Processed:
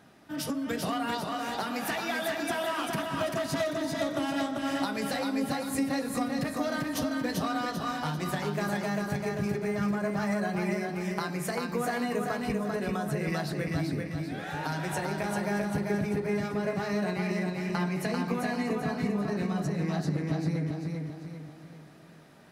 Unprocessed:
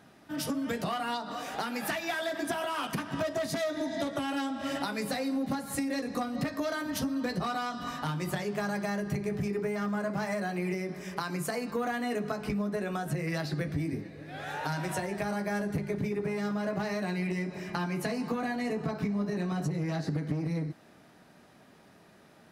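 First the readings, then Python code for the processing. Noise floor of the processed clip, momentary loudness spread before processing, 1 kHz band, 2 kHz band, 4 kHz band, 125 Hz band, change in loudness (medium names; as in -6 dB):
-48 dBFS, 3 LU, +2.0 dB, +2.0 dB, +2.0 dB, +2.0 dB, +2.0 dB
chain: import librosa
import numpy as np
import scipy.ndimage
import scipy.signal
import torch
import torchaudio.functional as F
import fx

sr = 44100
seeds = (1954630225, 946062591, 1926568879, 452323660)

y = fx.echo_feedback(x, sr, ms=392, feedback_pct=43, wet_db=-3.5)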